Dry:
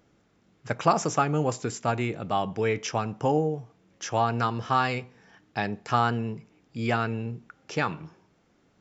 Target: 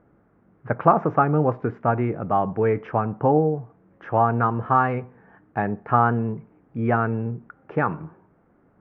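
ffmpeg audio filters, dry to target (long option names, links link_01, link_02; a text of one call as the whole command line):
ffmpeg -i in.wav -af "lowpass=frequency=1600:width=0.5412,lowpass=frequency=1600:width=1.3066,volume=5.5dB" out.wav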